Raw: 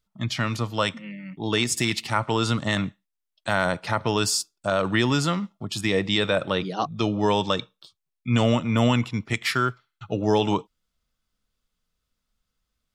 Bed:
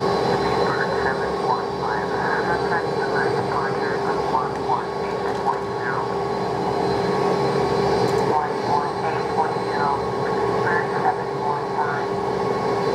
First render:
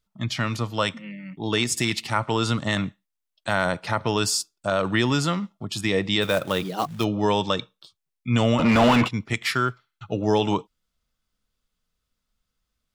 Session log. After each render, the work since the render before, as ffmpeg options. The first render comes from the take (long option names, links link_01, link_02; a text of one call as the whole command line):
ffmpeg -i in.wav -filter_complex "[0:a]asplit=3[link_01][link_02][link_03];[link_01]afade=type=out:start_time=6.21:duration=0.02[link_04];[link_02]acrusher=bits=4:mode=log:mix=0:aa=0.000001,afade=type=in:start_time=6.21:duration=0.02,afade=type=out:start_time=7.03:duration=0.02[link_05];[link_03]afade=type=in:start_time=7.03:duration=0.02[link_06];[link_04][link_05][link_06]amix=inputs=3:normalize=0,asplit=3[link_07][link_08][link_09];[link_07]afade=type=out:start_time=8.58:duration=0.02[link_10];[link_08]asplit=2[link_11][link_12];[link_12]highpass=frequency=720:poles=1,volume=31dB,asoftclip=type=tanh:threshold=-8.5dB[link_13];[link_11][link_13]amix=inputs=2:normalize=0,lowpass=frequency=1300:poles=1,volume=-6dB,afade=type=in:start_time=8.58:duration=0.02,afade=type=out:start_time=9.07:duration=0.02[link_14];[link_09]afade=type=in:start_time=9.07:duration=0.02[link_15];[link_10][link_14][link_15]amix=inputs=3:normalize=0" out.wav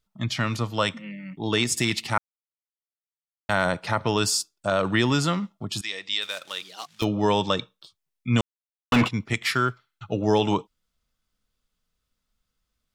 ffmpeg -i in.wav -filter_complex "[0:a]asettb=1/sr,asplit=3[link_01][link_02][link_03];[link_01]atrim=end=5.814[link_04];[link_02]atrim=start=5.81:end=7.02,asetpts=PTS-STARTPTS,afade=type=in:duration=0.004:curve=qsin,afade=type=out:start_time=1.206:duration=0.004:curve=qsin,bandpass=frequency=4700:width_type=q:width=0.84[link_05];[link_03]atrim=start=7.016[link_06];[link_04][link_05]acrossfade=duration=0.004:curve1=hsin:curve2=qsin[link_07];[link_07][link_06]acrossfade=duration=0.004:curve1=qsin:curve2=hsin,asplit=5[link_08][link_09][link_10][link_11][link_12];[link_08]atrim=end=2.18,asetpts=PTS-STARTPTS,afade=type=out:start_time=2.176:duration=0.004:curve=hsin[link_13];[link_09]atrim=start=2.18:end=3.49,asetpts=PTS-STARTPTS,volume=0[link_14];[link_10]atrim=start=3.49:end=8.41,asetpts=PTS-STARTPTS,afade=type=in:duration=0.004:curve=hsin,afade=type=out:start_time=4.916:duration=0.004:curve=hsin[link_15];[link_11]atrim=start=8.41:end=8.92,asetpts=PTS-STARTPTS,volume=0[link_16];[link_12]atrim=start=8.92,asetpts=PTS-STARTPTS,afade=type=in:duration=0.004:curve=hsin[link_17];[link_13][link_14][link_15][link_16][link_17]concat=n=5:v=0:a=1" out.wav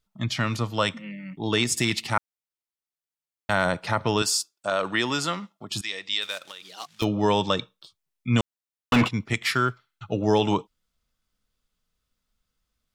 ffmpeg -i in.wav -filter_complex "[0:a]asettb=1/sr,asplit=3[link_01][link_02][link_03];[link_01]atrim=end=4.224[link_04];[link_02]atrim=start=4.22:end=5.71,asetpts=PTS-STARTPTS,afade=type=in:duration=0.004:curve=qsin,afade=type=out:start_time=1.486:duration=0.004:curve=qsin,highpass=frequency=480:poles=1[link_05];[link_03]atrim=start=5.706[link_06];[link_04][link_05]acrossfade=duration=0.004:curve1=hsin:curve2=qsin[link_07];[link_07][link_06]acrossfade=duration=0.004:curve1=qsin:curve2=hsin,asplit=3[link_08][link_09][link_10];[link_08]afade=type=out:start_time=6.37:duration=0.02[link_11];[link_09]acompressor=threshold=-36dB:ratio=10:attack=3.2:release=140:knee=1:detection=peak,afade=type=in:start_time=6.37:duration=0.02,afade=type=out:start_time=6.79:duration=0.02[link_12];[link_10]afade=type=in:start_time=6.79:duration=0.02[link_13];[link_11][link_12][link_13]amix=inputs=3:normalize=0" out.wav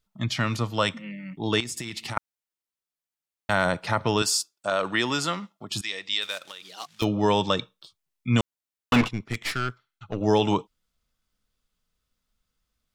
ffmpeg -i in.wav -filter_complex "[0:a]asettb=1/sr,asplit=3[link_01][link_02][link_03];[link_01]atrim=end=1.604[link_04];[link_02]atrim=start=1.6:end=2.17,asetpts=PTS-STARTPTS,afade=type=in:duration=0.004:curve=qsin,afade=type=out:start_time=0.566:duration=0.004:curve=qsin,acompressor=threshold=-29dB:ratio=16:attack=3.2:release=140:knee=1:detection=peak[link_05];[link_03]atrim=start=2.166[link_06];[link_04][link_05]acrossfade=duration=0.004:curve1=hsin:curve2=qsin[link_07];[link_07][link_06]acrossfade=duration=0.004:curve1=qsin:curve2=hsin,asettb=1/sr,asplit=3[link_08][link_09][link_10];[link_08]atrim=end=9.014[link_11];[link_09]atrim=start=9.01:end=10.21,asetpts=PTS-STARTPTS,afade=type=in:duration=0.004:curve=qsin,afade=type=out:start_time=1.196:duration=0.004:curve=qsin,aeval=exprs='(tanh(12.6*val(0)+0.75)-tanh(0.75))/12.6':channel_layout=same[link_12];[link_10]atrim=start=10.206[link_13];[link_11][link_12]acrossfade=duration=0.004:curve1=hsin:curve2=qsin[link_14];[link_14][link_13]acrossfade=duration=0.004:curve1=qsin:curve2=hsin" out.wav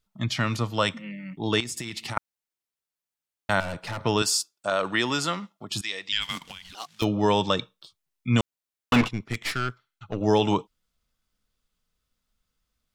ffmpeg -i in.wav -filter_complex "[0:a]asettb=1/sr,asplit=3[link_01][link_02][link_03];[link_01]atrim=end=3.604[link_04];[link_02]atrim=start=3.6:end=4.03,asetpts=PTS-STARTPTS,afade=type=in:duration=0.004:curve=qsin,afade=type=out:start_time=0.426:duration=0.004:curve=qsin,aeval=exprs='(tanh(28.2*val(0)+0.35)-tanh(0.35))/28.2':channel_layout=same[link_05];[link_03]atrim=start=4.026[link_06];[link_04][link_05]acrossfade=duration=0.004:curve1=hsin:curve2=qsin[link_07];[link_07][link_06]acrossfade=duration=0.004:curve1=qsin:curve2=hsin,asettb=1/sr,asplit=3[link_08][link_09][link_10];[link_08]atrim=end=6.124[link_11];[link_09]atrim=start=6.12:end=6.75,asetpts=PTS-STARTPTS,afade=type=in:duration=0.004:curve=qsin,afade=type=out:start_time=0.626:duration=0.004:curve=qsin,afreqshift=-370[link_12];[link_10]atrim=start=6.746[link_13];[link_11][link_12]acrossfade=duration=0.004:curve1=hsin:curve2=qsin[link_14];[link_14][link_13]acrossfade=duration=0.004:curve1=qsin:curve2=hsin" out.wav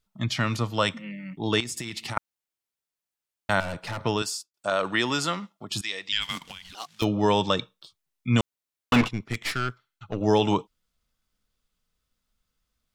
ffmpeg -i in.wav -filter_complex "[0:a]asplit=2[link_01][link_02];[link_01]atrim=end=4.54,asetpts=PTS-STARTPTS,afade=type=out:start_time=4.01:duration=0.53[link_03];[link_02]atrim=start=4.54,asetpts=PTS-STARTPTS,afade=type=in:duration=0.004:curve=hsin[link_04];[link_03][link_04]concat=n=2:v=0:a=1" out.wav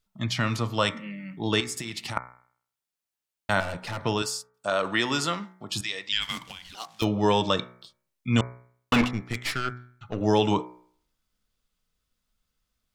ffmpeg -i in.wav -af "bandreject=frequency=61.56:width_type=h:width=4,bandreject=frequency=123.12:width_type=h:width=4,bandreject=frequency=184.68:width_type=h:width=4,bandreject=frequency=246.24:width_type=h:width=4,bandreject=frequency=307.8:width_type=h:width=4,bandreject=frequency=369.36:width_type=h:width=4,bandreject=frequency=430.92:width_type=h:width=4,bandreject=frequency=492.48:width_type=h:width=4,bandreject=frequency=554.04:width_type=h:width=4,bandreject=frequency=615.6:width_type=h:width=4,bandreject=frequency=677.16:width_type=h:width=4,bandreject=frequency=738.72:width_type=h:width=4,bandreject=frequency=800.28:width_type=h:width=4,bandreject=frequency=861.84:width_type=h:width=4,bandreject=frequency=923.4:width_type=h:width=4,bandreject=frequency=984.96:width_type=h:width=4,bandreject=frequency=1046.52:width_type=h:width=4,bandreject=frequency=1108.08:width_type=h:width=4,bandreject=frequency=1169.64:width_type=h:width=4,bandreject=frequency=1231.2:width_type=h:width=4,bandreject=frequency=1292.76:width_type=h:width=4,bandreject=frequency=1354.32:width_type=h:width=4,bandreject=frequency=1415.88:width_type=h:width=4,bandreject=frequency=1477.44:width_type=h:width=4,bandreject=frequency=1539:width_type=h:width=4,bandreject=frequency=1600.56:width_type=h:width=4,bandreject=frequency=1662.12:width_type=h:width=4,bandreject=frequency=1723.68:width_type=h:width=4,bandreject=frequency=1785.24:width_type=h:width=4,bandreject=frequency=1846.8:width_type=h:width=4,bandreject=frequency=1908.36:width_type=h:width=4,bandreject=frequency=1969.92:width_type=h:width=4,bandreject=frequency=2031.48:width_type=h:width=4,bandreject=frequency=2093.04:width_type=h:width=4,bandreject=frequency=2154.6:width_type=h:width=4,bandreject=frequency=2216.16:width_type=h:width=4,bandreject=frequency=2277.72:width_type=h:width=4,bandreject=frequency=2339.28:width_type=h:width=4" out.wav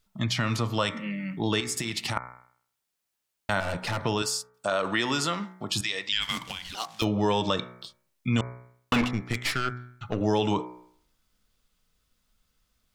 ffmpeg -i in.wav -filter_complex "[0:a]asplit=2[link_01][link_02];[link_02]alimiter=limit=-20dB:level=0:latency=1:release=74,volume=0.5dB[link_03];[link_01][link_03]amix=inputs=2:normalize=0,acompressor=threshold=-31dB:ratio=1.5" out.wav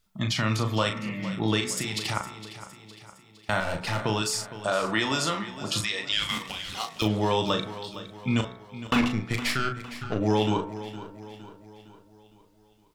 ffmpeg -i in.wav -filter_complex "[0:a]asplit=2[link_01][link_02];[link_02]adelay=37,volume=-6.5dB[link_03];[link_01][link_03]amix=inputs=2:normalize=0,aecho=1:1:461|922|1383|1844|2305:0.2|0.0998|0.0499|0.0249|0.0125" out.wav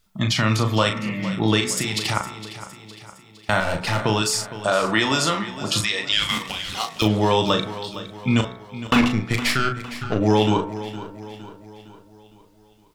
ffmpeg -i in.wav -af "volume=6dB" out.wav